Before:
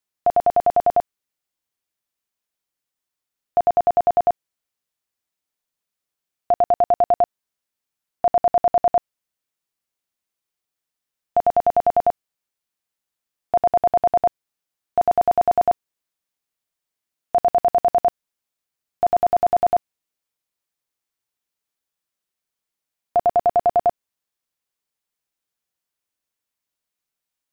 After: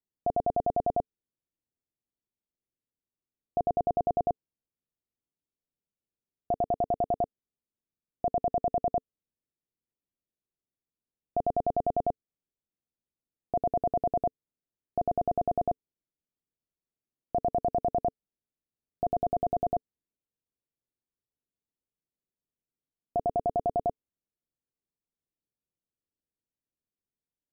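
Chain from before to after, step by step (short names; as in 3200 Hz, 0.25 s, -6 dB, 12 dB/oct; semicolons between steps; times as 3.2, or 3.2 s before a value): EQ curve 260 Hz 0 dB, 440 Hz -3 dB, 1900 Hz -29 dB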